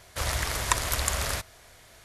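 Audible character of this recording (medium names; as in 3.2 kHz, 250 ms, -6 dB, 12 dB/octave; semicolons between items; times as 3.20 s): noise floor -54 dBFS; spectral tilt -2.5 dB/octave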